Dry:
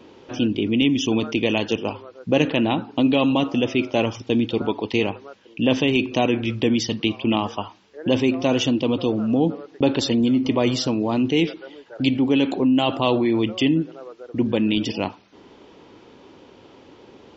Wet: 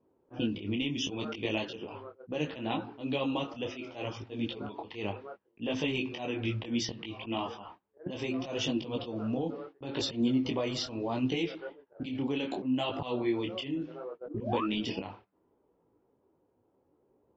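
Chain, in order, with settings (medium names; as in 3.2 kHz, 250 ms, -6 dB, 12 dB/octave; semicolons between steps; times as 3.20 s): gate -39 dBFS, range -19 dB; level-controlled noise filter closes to 830 Hz, open at -14 dBFS; peaking EQ 240 Hz -3.5 dB 1 oct; compression 16:1, threshold -24 dBFS, peak gain reduction 11.5 dB; painted sound rise, 14.26–14.65 s, 240–1400 Hz -32 dBFS; slow attack 116 ms; detune thickener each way 24 cents; trim +1 dB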